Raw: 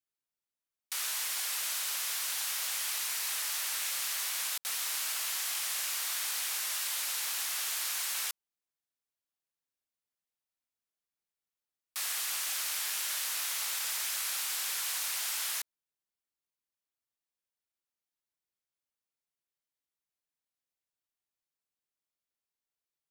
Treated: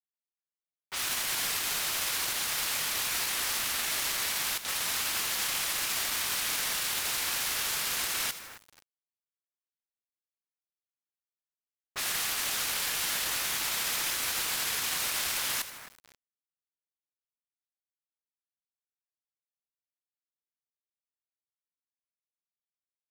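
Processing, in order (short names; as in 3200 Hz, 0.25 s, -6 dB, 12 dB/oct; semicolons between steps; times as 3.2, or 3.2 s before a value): HPF 450 Hz 24 dB/oct; in parallel at -7 dB: sample-rate reducer 13000 Hz; on the sum: limiter -29.5 dBFS, peak gain reduction 10 dB; low-pass opened by the level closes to 580 Hz, open at -37.5 dBFS; on a send: split-band echo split 2200 Hz, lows 0.266 s, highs 80 ms, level -13 dB; on the sum: companded quantiser 4-bit; gain +7.5 dB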